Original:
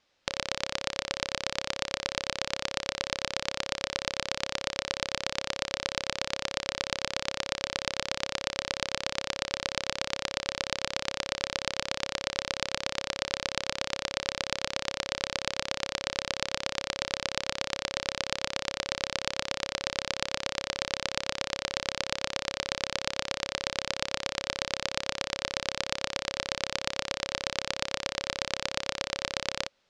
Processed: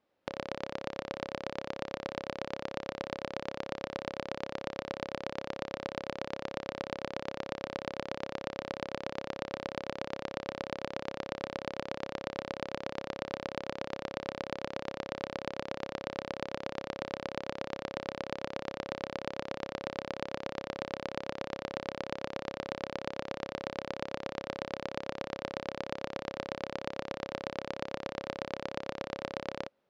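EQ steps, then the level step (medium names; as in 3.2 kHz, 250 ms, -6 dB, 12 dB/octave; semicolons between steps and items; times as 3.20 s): band-pass filter 320 Hz, Q 0.58; +1.5 dB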